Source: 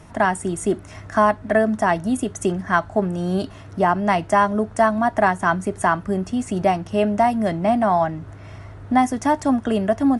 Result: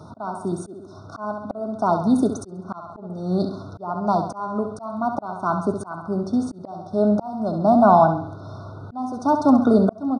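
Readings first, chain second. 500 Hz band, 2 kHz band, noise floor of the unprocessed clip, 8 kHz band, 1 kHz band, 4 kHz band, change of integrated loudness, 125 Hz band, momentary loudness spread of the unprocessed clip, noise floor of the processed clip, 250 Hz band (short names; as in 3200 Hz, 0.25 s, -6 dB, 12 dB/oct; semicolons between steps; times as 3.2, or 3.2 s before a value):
-2.0 dB, -14.0 dB, -40 dBFS, -10.0 dB, -3.0 dB, -8.5 dB, -1.0 dB, -1.0 dB, 7 LU, -42 dBFS, 0.0 dB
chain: HPF 96 Hz 24 dB/oct; FFT band-reject 1500–3500 Hz; feedback echo 67 ms, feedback 44%, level -9 dB; auto swell 0.69 s; polynomial smoothing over 15 samples; gain +4.5 dB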